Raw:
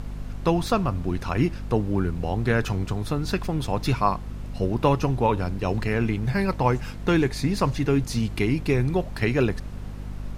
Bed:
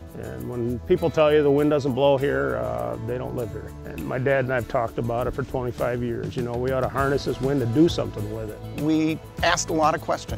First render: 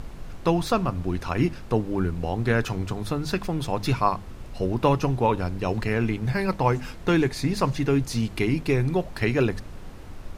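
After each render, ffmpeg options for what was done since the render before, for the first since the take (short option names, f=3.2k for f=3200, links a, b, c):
-af "bandreject=f=50:t=h:w=6,bandreject=f=100:t=h:w=6,bandreject=f=150:t=h:w=6,bandreject=f=200:t=h:w=6,bandreject=f=250:t=h:w=6"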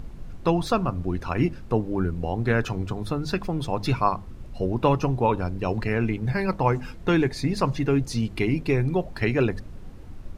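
-af "afftdn=nr=8:nf=-40"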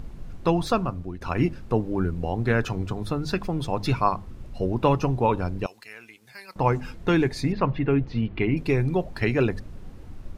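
-filter_complex "[0:a]asettb=1/sr,asplit=3[a][b][c];[a]atrim=end=5.664[d];[b]atrim=start=5.66:end=6.56,asetpts=PTS-STARTPTS,afade=t=in:d=0.004:c=qsin,afade=t=out:st=0.896:d=0.004:c=qsin,aderivative[e];[c]atrim=start=6.556[f];[d][e]acrossfade=d=0.004:c1=hsin:c2=qsin[g];[g][f]acrossfade=d=0.004:c1=qsin:c2=hsin,asettb=1/sr,asplit=3[h][i][j];[h]atrim=end=7.524[k];[i]atrim=start=7.52:end=8.57,asetpts=PTS-STARTPTS,afade=t=in:d=0.004:c=qsin,afade=t=out:st=1.046:d=0.004:c=qsin,lowpass=f=3.1k:w=0.5412,lowpass=f=3.1k:w=1.3066[l];[j]atrim=start=8.566[m];[k][l]acrossfade=d=0.004:c1=hsin:c2=qsin[n];[n][m]acrossfade=d=0.004:c1=qsin:c2=hsin,asplit=2[o][p];[o]atrim=end=1.21,asetpts=PTS-STARTPTS,afade=t=out:st=0.74:d=0.47:silence=0.251189[q];[p]atrim=start=1.21,asetpts=PTS-STARTPTS,afade=t=in:d=0.004:c=hsin:silence=0.251189[r];[q][r]concat=n=2:v=0:a=1"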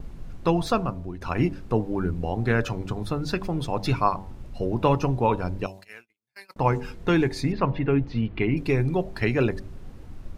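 -af "bandreject=f=95.55:t=h:w=4,bandreject=f=191.1:t=h:w=4,bandreject=f=286.65:t=h:w=4,bandreject=f=382.2:t=h:w=4,bandreject=f=477.75:t=h:w=4,bandreject=f=573.3:t=h:w=4,bandreject=f=668.85:t=h:w=4,bandreject=f=764.4:t=h:w=4,bandreject=f=859.95:t=h:w=4,bandreject=f=955.5:t=h:w=4,agate=range=-36dB:threshold=-42dB:ratio=16:detection=peak"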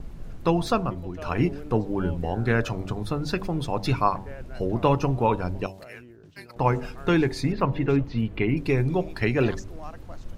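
-filter_complex "[1:a]volume=-21.5dB[a];[0:a][a]amix=inputs=2:normalize=0"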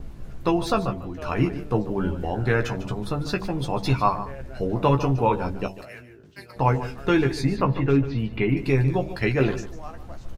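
-filter_complex "[0:a]asplit=2[a][b];[b]adelay=15,volume=-5.5dB[c];[a][c]amix=inputs=2:normalize=0,aecho=1:1:148:0.211"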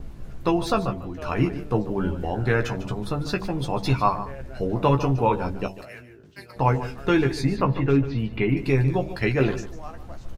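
-af anull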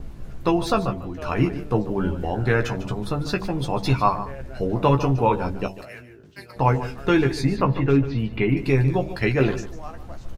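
-af "volume=1.5dB"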